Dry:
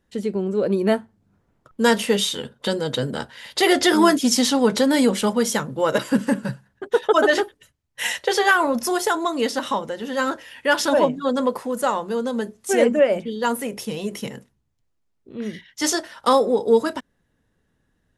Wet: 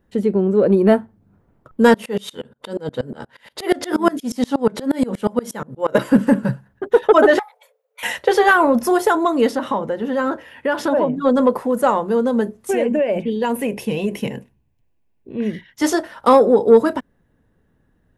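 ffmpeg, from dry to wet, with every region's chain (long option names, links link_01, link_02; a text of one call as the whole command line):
ffmpeg -i in.wav -filter_complex "[0:a]asettb=1/sr,asplit=3[link_01][link_02][link_03];[link_01]atrim=end=1.944[link_04];[link_02]atrim=start=1.94:end=5.95,asetpts=PTS-STARTPTS,afade=type=in:duration=0.004:curve=qsin,afade=type=out:start_time=4.006:duration=0.004:curve=qsin,lowshelf=frequency=140:gain=-5,aeval=exprs='val(0)*pow(10,-27*if(lt(mod(-8.4*n/s,1),2*abs(-8.4)/1000),1-mod(-8.4*n/s,1)/(2*abs(-8.4)/1000),(mod(-8.4*n/s,1)-2*abs(-8.4)/1000)/(1-2*abs(-8.4)/1000))/20)':channel_layout=same[link_05];[link_03]atrim=start=5.946[link_06];[link_04][link_05]acrossfade=duration=0.004:curve1=hsin:curve2=qsin[link_07];[link_07][link_06]acrossfade=duration=0.004:curve1=qsin:curve2=hsin,asettb=1/sr,asplit=3[link_08][link_09][link_10];[link_08]atrim=end=7.394[link_11];[link_09]atrim=start=7.39:end=8.03,asetpts=PTS-STARTPTS,afade=type=in:duration=0.004:curve=qsin,afade=type=out:start_time=0.636:duration=0.004:curve=qsin,acompressor=threshold=-33dB:ratio=5:attack=3.2:release=140:knee=1:detection=peak,afreqshift=440[link_12];[link_10]atrim=start=8.026[link_13];[link_11][link_12]acrossfade=duration=0.004:curve1=hsin:curve2=qsin[link_14];[link_14][link_13]acrossfade=duration=0.004:curve1=qsin:curve2=hsin,asettb=1/sr,asplit=3[link_15][link_16][link_17];[link_15]atrim=end=9.554[link_18];[link_16]atrim=start=9.55:end=11.18,asetpts=PTS-STARTPTS,afade=type=in:duration=0.004:curve=qsin,afade=type=out:start_time=1.626:duration=0.004:curve=qsin,highpass=41,highshelf=frequency=3700:gain=-6.5,acompressor=threshold=-22dB:ratio=2.5:attack=3.2:release=140:knee=1:detection=peak[link_19];[link_17]atrim=start=11.176[link_20];[link_18][link_19]acrossfade=duration=0.004:curve1=hsin:curve2=qsin[link_21];[link_21][link_20]acrossfade=duration=0.004:curve1=qsin:curve2=hsin,asettb=1/sr,asplit=3[link_22][link_23][link_24];[link_22]atrim=end=12.704[link_25];[link_23]atrim=start=12.7:end=15.5,asetpts=PTS-STARTPTS,afade=type=in:duration=0.004:curve=qsin,afade=type=out:start_time=2.796:duration=0.004:curve=qsin,asuperstop=centerf=1300:order=4:qfactor=4.7,equalizer=frequency=2600:width=3.9:gain=9.5,acompressor=threshold=-21dB:ratio=5:attack=3.2:release=140:knee=1:detection=peak[link_26];[link_24]atrim=start=15.496[link_27];[link_25][link_26]acrossfade=duration=0.004:curve1=hsin:curve2=qsin[link_28];[link_28][link_27]acrossfade=duration=0.004:curve1=qsin:curve2=hsin,equalizer=frequency=5900:width_type=o:width=2.7:gain=-13,acontrast=47,volume=1.5dB" out.wav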